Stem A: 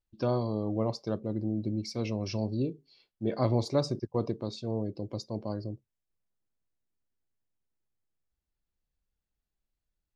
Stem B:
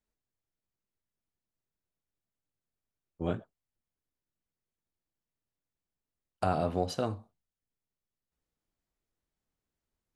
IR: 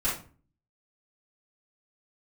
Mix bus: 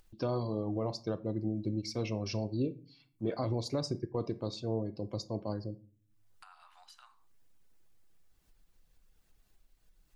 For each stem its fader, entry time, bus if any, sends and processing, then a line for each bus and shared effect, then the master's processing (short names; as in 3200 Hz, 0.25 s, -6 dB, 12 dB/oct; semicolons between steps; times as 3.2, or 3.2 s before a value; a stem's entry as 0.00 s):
-1.0 dB, 0.00 s, send -20 dB, reverb removal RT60 0.52 s; limiter -21.5 dBFS, peak gain reduction 8.5 dB
-17.5 dB, 0.00 s, no send, steep high-pass 940 Hz 48 dB/oct; compressor 2:1, threshold -46 dBFS, peak gain reduction 7.5 dB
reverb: on, RT60 0.40 s, pre-delay 3 ms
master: upward compressor, threshold -48 dBFS